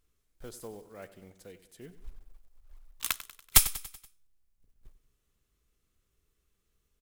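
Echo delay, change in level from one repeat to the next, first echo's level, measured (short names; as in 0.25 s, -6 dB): 95 ms, -5.5 dB, -15.0 dB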